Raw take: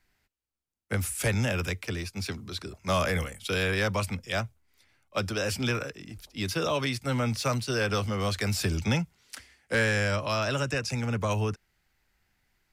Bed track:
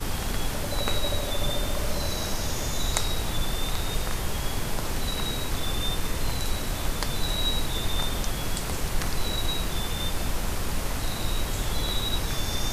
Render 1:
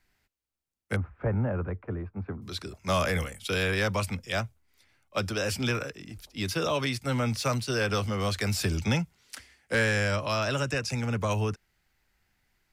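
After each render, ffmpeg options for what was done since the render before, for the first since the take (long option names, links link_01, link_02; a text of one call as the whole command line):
ffmpeg -i in.wav -filter_complex "[0:a]asettb=1/sr,asplit=3[link_01][link_02][link_03];[link_01]atrim=end=0.964[link_04];[link_02]atrim=start=0.96:end=2.42,asetpts=PTS-STARTPTS,afade=type=in:duration=0.004:curve=qsin,afade=type=out:start_time=1.456:duration=0.004:curve=qsin,lowpass=frequency=1300:width=0.5412,lowpass=frequency=1300:width=1.3066[link_05];[link_03]atrim=start=2.416[link_06];[link_04][link_05]acrossfade=duration=0.004:curve1=hsin:curve2=qsin[link_07];[link_07][link_06]acrossfade=duration=0.004:curve1=qsin:curve2=hsin" out.wav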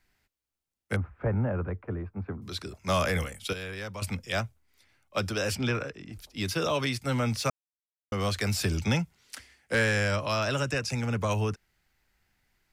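ffmpeg -i in.wav -filter_complex "[0:a]asettb=1/sr,asplit=3[link_01][link_02][link_03];[link_01]atrim=end=5.554[link_04];[link_02]atrim=start=5.55:end=6.13,asetpts=PTS-STARTPTS,afade=type=in:duration=0.004:curve=qsin,afade=type=out:start_time=0.576:duration=0.004:curve=qsin,aemphasis=mode=reproduction:type=50fm[link_05];[link_03]atrim=start=6.126[link_06];[link_04][link_05]acrossfade=duration=0.004:curve1=hsin:curve2=qsin[link_07];[link_07][link_06]acrossfade=duration=0.004:curve1=qsin:curve2=hsin,asplit=5[link_08][link_09][link_10][link_11][link_12];[link_08]atrim=end=3.532[link_13];[link_09]atrim=start=3.528:end=4.022,asetpts=PTS-STARTPTS,volume=-10.5dB[link_14];[link_10]atrim=start=4.018:end=7.5,asetpts=PTS-STARTPTS,afade=type=out:start_time=3.478:duration=0.004:curve=hsin[link_15];[link_11]atrim=start=7.5:end=8.12,asetpts=PTS-STARTPTS,volume=0[link_16];[link_12]atrim=start=8.12,asetpts=PTS-STARTPTS,afade=type=in:duration=0.004:curve=hsin[link_17];[link_13][link_14]acrossfade=duration=0.004:curve1=hsin:curve2=hsin[link_18];[link_15][link_16][link_17]concat=n=3:v=0:a=1[link_19];[link_18][link_19]acrossfade=duration=0.004:curve1=hsin:curve2=hsin" out.wav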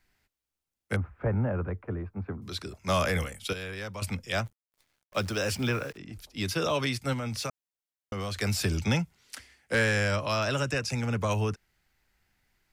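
ffmpeg -i in.wav -filter_complex "[0:a]asplit=3[link_01][link_02][link_03];[link_01]afade=type=out:start_time=4.45:duration=0.02[link_04];[link_02]acrusher=bits=9:dc=4:mix=0:aa=0.000001,afade=type=in:start_time=4.45:duration=0.02,afade=type=out:start_time=5.96:duration=0.02[link_05];[link_03]afade=type=in:start_time=5.96:duration=0.02[link_06];[link_04][link_05][link_06]amix=inputs=3:normalize=0,asettb=1/sr,asplit=3[link_07][link_08][link_09];[link_07]atrim=end=7.134[link_10];[link_08]atrim=start=7.13:end=8.42,asetpts=PTS-STARTPTS,afade=type=in:duration=0.004:curve=qsin,afade=type=out:start_time=1.286:duration=0.004:curve=qsin,acompressor=threshold=-29dB:ratio=6:attack=3.2:release=140:knee=1:detection=peak[link_11];[link_09]atrim=start=8.416[link_12];[link_10][link_11]acrossfade=duration=0.004:curve1=hsin:curve2=qsin[link_13];[link_13][link_12]acrossfade=duration=0.004:curve1=qsin:curve2=hsin" out.wav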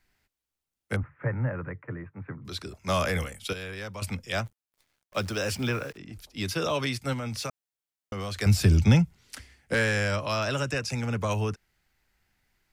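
ffmpeg -i in.wav -filter_complex "[0:a]asettb=1/sr,asplit=3[link_01][link_02][link_03];[link_01]atrim=end=1.034[link_04];[link_02]atrim=start=1.03:end=2.45,asetpts=PTS-STARTPTS,afade=type=in:duration=0.004:curve=qsin,afade=type=out:start_time=1.416:duration=0.004:curve=qsin,highpass=frequency=110:width=0.5412,highpass=frequency=110:width=1.3066,equalizer=frequency=140:width_type=q:width=4:gain=8,equalizer=frequency=210:width_type=q:width=4:gain=-10,equalizer=frequency=400:width_type=q:width=4:gain=-7,equalizer=frequency=720:width_type=q:width=4:gain=-8,equalizer=frequency=1900:width_type=q:width=4:gain=9,lowpass=frequency=2800:width=0.5412,lowpass=frequency=2800:width=1.3066[link_05];[link_03]atrim=start=2.446[link_06];[link_04][link_05]acrossfade=duration=0.004:curve1=hsin:curve2=qsin[link_07];[link_07][link_06]acrossfade=duration=0.004:curve1=qsin:curve2=hsin,asettb=1/sr,asplit=3[link_08][link_09][link_10];[link_08]atrim=end=8.464[link_11];[link_09]atrim=start=8.46:end=9.74,asetpts=PTS-STARTPTS,afade=type=in:duration=0.004:curve=qsin,afade=type=out:start_time=1.276:duration=0.004:curve=qsin,lowshelf=frequency=240:gain=12[link_12];[link_10]atrim=start=9.736[link_13];[link_11][link_12]acrossfade=duration=0.004:curve1=hsin:curve2=qsin[link_14];[link_14][link_13]acrossfade=duration=0.004:curve1=qsin:curve2=hsin" out.wav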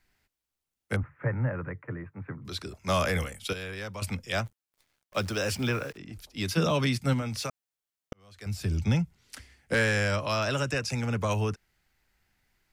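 ffmpeg -i in.wav -filter_complex "[0:a]asettb=1/sr,asplit=3[link_01][link_02][link_03];[link_01]atrim=end=6.574[link_04];[link_02]atrim=start=6.57:end=7.22,asetpts=PTS-STARTPTS,afade=type=in:duration=0.004:curve=qsin,afade=type=out:start_time=0.646:duration=0.004:curve=qsin,equalizer=frequency=180:width_type=o:width=0.77:gain=12.5[link_05];[link_03]atrim=start=7.216[link_06];[link_04][link_05]acrossfade=duration=0.004:curve1=hsin:curve2=qsin[link_07];[link_07][link_06]acrossfade=duration=0.004:curve1=qsin:curve2=hsin,asplit=2[link_08][link_09];[link_08]atrim=end=8.13,asetpts=PTS-STARTPTS,afade=type=out:start_time=8.126:duration=0.004:curve=hsin[link_10];[link_09]atrim=start=8.13,asetpts=PTS-STARTPTS,afade=type=in:duration=1.63[link_11];[link_10][link_11]concat=n=2:v=0:a=1" out.wav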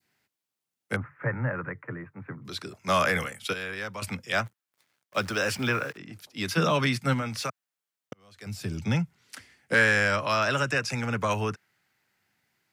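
ffmpeg -i in.wav -af "highpass=frequency=110:width=0.5412,highpass=frequency=110:width=1.3066,adynamicequalizer=threshold=0.00631:dfrequency=1500:dqfactor=0.9:tfrequency=1500:tqfactor=0.9:attack=5:release=100:ratio=0.375:range=3.5:mode=boostabove:tftype=bell" out.wav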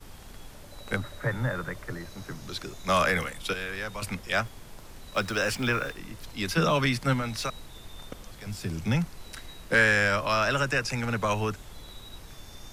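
ffmpeg -i in.wav -i bed.wav -filter_complex "[1:a]volume=-17.5dB[link_01];[0:a][link_01]amix=inputs=2:normalize=0" out.wav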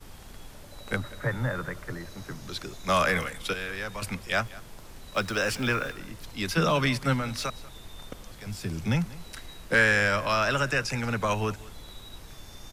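ffmpeg -i in.wav -af "aecho=1:1:189:0.1" out.wav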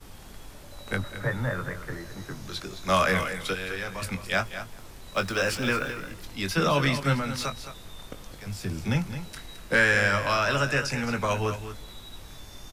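ffmpeg -i in.wav -filter_complex "[0:a]asplit=2[link_01][link_02];[link_02]adelay=21,volume=-8.5dB[link_03];[link_01][link_03]amix=inputs=2:normalize=0,asplit=2[link_04][link_05];[link_05]aecho=0:1:216:0.282[link_06];[link_04][link_06]amix=inputs=2:normalize=0" out.wav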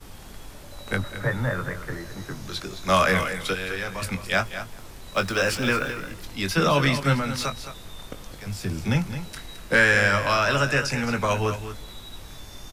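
ffmpeg -i in.wav -af "volume=3dB" out.wav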